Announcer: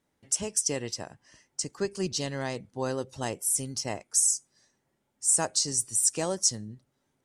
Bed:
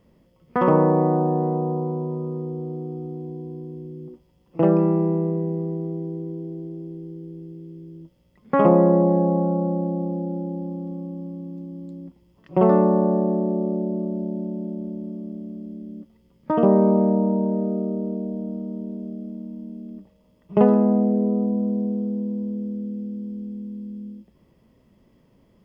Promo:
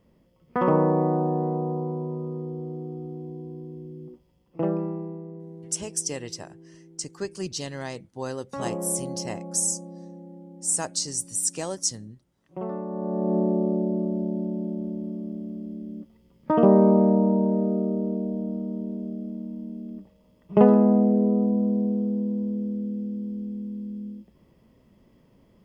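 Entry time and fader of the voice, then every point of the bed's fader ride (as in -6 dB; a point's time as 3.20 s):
5.40 s, -1.5 dB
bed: 4.34 s -3.5 dB
5.24 s -16 dB
12.86 s -16 dB
13.37 s 0 dB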